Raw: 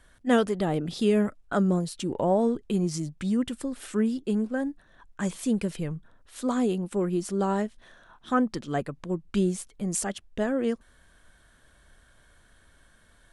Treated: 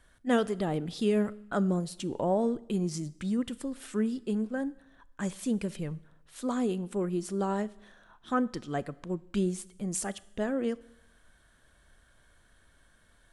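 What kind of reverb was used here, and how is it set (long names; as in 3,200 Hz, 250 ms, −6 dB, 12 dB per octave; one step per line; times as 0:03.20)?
four-comb reverb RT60 0.84 s, combs from 26 ms, DRR 19.5 dB
level −4 dB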